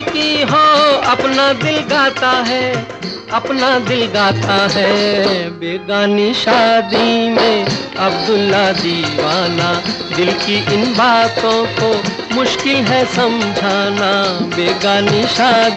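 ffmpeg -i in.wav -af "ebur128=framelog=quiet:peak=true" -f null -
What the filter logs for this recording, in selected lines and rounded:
Integrated loudness:
  I:         -13.1 LUFS
  Threshold: -23.2 LUFS
Loudness range:
  LRA:         1.4 LU
  Threshold: -33.5 LUFS
  LRA low:   -14.1 LUFS
  LRA high:  -12.7 LUFS
True peak:
  Peak:       -1.3 dBFS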